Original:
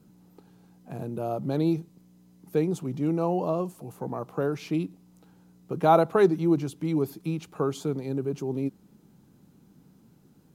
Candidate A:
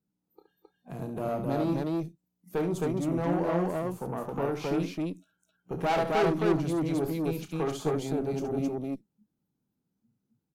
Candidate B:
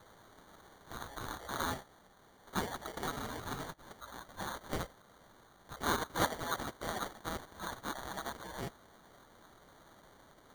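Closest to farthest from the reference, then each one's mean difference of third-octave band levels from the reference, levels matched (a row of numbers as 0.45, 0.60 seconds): A, B; 7.5, 16.0 decibels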